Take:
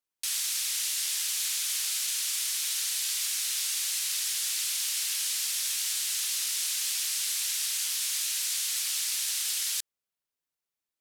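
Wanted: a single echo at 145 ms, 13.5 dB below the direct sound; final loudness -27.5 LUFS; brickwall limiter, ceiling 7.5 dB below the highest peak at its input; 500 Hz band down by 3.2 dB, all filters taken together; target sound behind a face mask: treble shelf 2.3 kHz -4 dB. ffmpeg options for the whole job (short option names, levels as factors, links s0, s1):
-af "equalizer=f=500:t=o:g=-4,alimiter=limit=0.0631:level=0:latency=1,highshelf=f=2300:g=-4,aecho=1:1:145:0.211,volume=2.11"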